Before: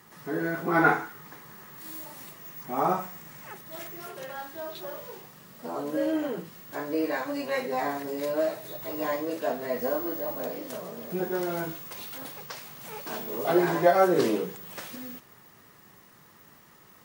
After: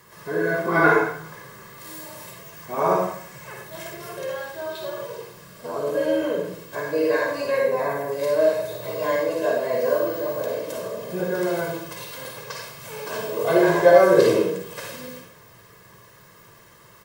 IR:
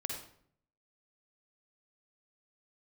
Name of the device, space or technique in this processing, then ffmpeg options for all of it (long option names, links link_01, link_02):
microphone above a desk: -filter_complex "[0:a]asettb=1/sr,asplit=3[link_01][link_02][link_03];[link_01]atrim=end=7.514[link_04];[link_02]atrim=start=7.51:end=8.12,asetpts=PTS-STARTPTS,afade=type=in:duration=0.004:curve=qsin,afade=type=out:start_time=0.606:duration=0.004:curve=qsin,equalizer=frequency=4300:width_type=o:width=1.8:gain=-8.5[link_05];[link_03]atrim=start=8.116[link_06];[link_04][link_05]acrossfade=duration=0.004:curve1=hsin:curve2=qsin[link_07];[link_07][link_06]acrossfade=duration=0.004:curve1=qsin:curve2=hsin,aecho=1:1:1.9:0.62[link_08];[1:a]atrim=start_sample=2205[link_09];[link_08][link_09]afir=irnorm=-1:irlink=0,volume=4dB"